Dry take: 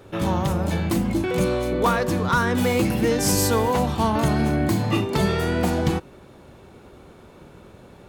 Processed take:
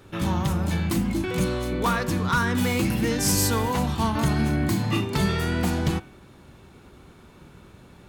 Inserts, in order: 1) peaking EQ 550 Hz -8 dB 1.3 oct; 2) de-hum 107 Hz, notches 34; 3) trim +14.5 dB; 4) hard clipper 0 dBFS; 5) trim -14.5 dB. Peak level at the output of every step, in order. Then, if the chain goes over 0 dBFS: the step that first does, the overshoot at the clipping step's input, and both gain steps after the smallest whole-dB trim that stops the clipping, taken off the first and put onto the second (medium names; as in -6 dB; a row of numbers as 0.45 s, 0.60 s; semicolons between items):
-9.0 dBFS, -9.5 dBFS, +5.0 dBFS, 0.0 dBFS, -14.5 dBFS; step 3, 5.0 dB; step 3 +9.5 dB, step 5 -9.5 dB